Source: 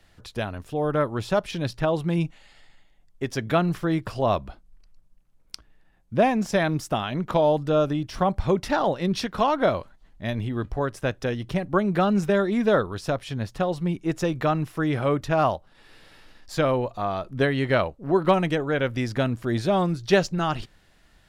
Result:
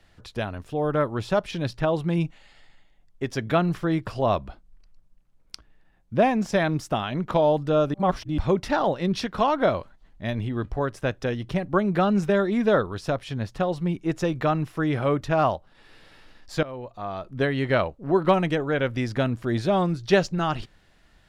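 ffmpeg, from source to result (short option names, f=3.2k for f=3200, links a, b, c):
-filter_complex "[0:a]asplit=4[a][b][c][d];[a]atrim=end=7.942[e];[b]atrim=start=7.938:end=8.382,asetpts=PTS-STARTPTS,areverse[f];[c]atrim=start=8.378:end=16.63,asetpts=PTS-STARTPTS,afade=t=out:st=8.248:d=0.004:c=hsin:silence=0.11885[g];[d]atrim=start=16.63,asetpts=PTS-STARTPTS,afade=t=in:d=1.38:c=qsin:silence=0.11885[h];[e][f]acrossfade=d=0.004:c1=hsin:c2=hsin[i];[g][h]concat=n=2:v=0:a=1[j];[i][j]acrossfade=d=0.004:c1=hsin:c2=hsin,highshelf=f=8.3k:g=-7.5"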